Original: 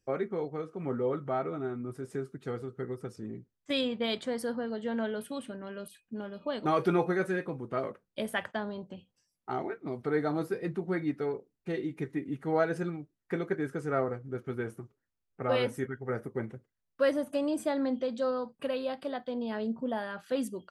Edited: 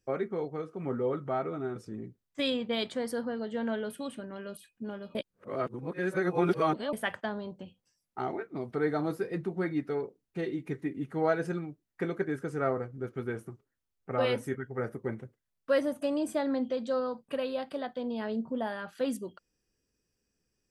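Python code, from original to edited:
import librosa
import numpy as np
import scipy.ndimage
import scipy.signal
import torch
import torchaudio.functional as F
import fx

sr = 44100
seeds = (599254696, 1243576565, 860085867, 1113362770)

y = fx.edit(x, sr, fx.cut(start_s=1.76, length_s=1.31),
    fx.reverse_span(start_s=6.46, length_s=1.78), tone=tone)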